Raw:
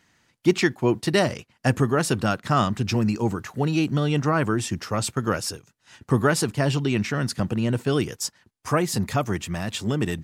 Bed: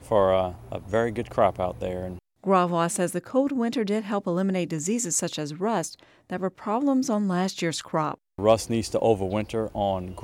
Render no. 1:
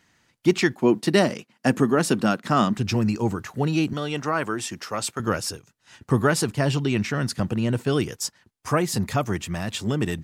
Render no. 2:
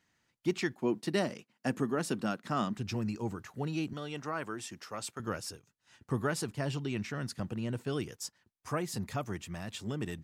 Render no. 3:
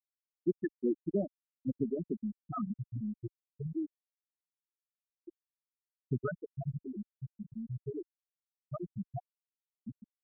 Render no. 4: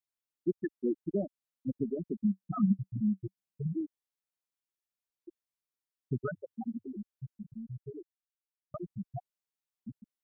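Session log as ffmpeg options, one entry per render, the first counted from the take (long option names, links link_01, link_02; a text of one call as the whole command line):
ffmpeg -i in.wav -filter_complex "[0:a]asettb=1/sr,asplit=3[link_01][link_02][link_03];[link_01]atrim=end=0.754[link_04];[link_02]atrim=start=0.75:end=2.78,asetpts=PTS-STARTPTS,afade=type=in:duration=0.004:curve=qsin,afade=type=out:start_time=2.026:duration=0.004:curve=qsin,highpass=frequency=210:width_type=q:width=1.7[link_05];[link_03]atrim=start=2.776[link_06];[link_04][link_05]acrossfade=duration=0.004:curve1=hsin:curve2=qsin[link_07];[link_07][link_06]acrossfade=duration=0.004:curve1=qsin:curve2=hsin,asettb=1/sr,asplit=3[link_08][link_09][link_10];[link_08]atrim=end=3.934[link_11];[link_09]atrim=start=3.93:end=5.2,asetpts=PTS-STARTPTS,afade=type=in:duration=0.004:curve=qsin,afade=type=out:start_time=1.266:duration=0.004:curve=qsin,highpass=frequency=450:poles=1[link_12];[link_10]atrim=start=5.196[link_13];[link_11][link_12]acrossfade=duration=0.004:curve1=hsin:curve2=qsin[link_14];[link_14][link_13]acrossfade=duration=0.004:curve1=qsin:curve2=hsin" out.wav
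ffmpeg -i in.wav -af "volume=-12dB" out.wav
ffmpeg -i in.wav -af "afftfilt=real='re*gte(hypot(re,im),0.178)':imag='im*gte(hypot(re,im),0.178)':win_size=1024:overlap=0.75,lowshelf=frequency=75:gain=8" out.wav
ffmpeg -i in.wav -filter_complex "[0:a]asettb=1/sr,asplit=3[link_01][link_02][link_03];[link_01]atrim=end=2.244[link_04];[link_02]atrim=start=2.24:end=3.81,asetpts=PTS-STARTPTS,afade=type=in:duration=0.004:curve=qsin,afade=type=out:start_time=1.566:duration=0.004:curve=qsin,equalizer=frequency=190:width_type=o:width=0.44:gain=13.5[link_05];[link_03]atrim=start=3.806[link_06];[link_04][link_05]acrossfade=duration=0.004:curve1=hsin:curve2=qsin[link_07];[link_07][link_06]acrossfade=duration=0.004:curve1=qsin:curve2=hsin,asplit=3[link_08][link_09][link_10];[link_08]afade=type=out:start_time=6.34:duration=0.02[link_11];[link_09]afreqshift=91,afade=type=in:start_time=6.34:duration=0.02,afade=type=out:start_time=6.84:duration=0.02[link_12];[link_10]afade=type=in:start_time=6.84:duration=0.02[link_13];[link_11][link_12][link_13]amix=inputs=3:normalize=0,asplit=2[link_14][link_15];[link_14]atrim=end=8.74,asetpts=PTS-STARTPTS,afade=type=out:start_time=7.38:duration=1.36[link_16];[link_15]atrim=start=8.74,asetpts=PTS-STARTPTS,afade=type=in:duration=0.004:curve=hsin[link_17];[link_16][link_17]concat=n=2:v=0:a=1" out.wav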